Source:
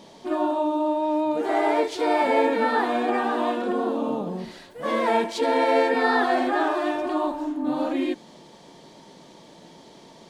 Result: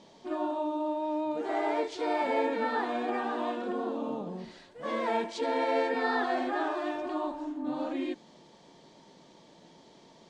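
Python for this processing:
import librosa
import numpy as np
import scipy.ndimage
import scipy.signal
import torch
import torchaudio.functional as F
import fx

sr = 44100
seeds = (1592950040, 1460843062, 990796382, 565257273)

y = scipy.signal.sosfilt(scipy.signal.butter(4, 8100.0, 'lowpass', fs=sr, output='sos'), x)
y = y * 10.0 ** (-8.0 / 20.0)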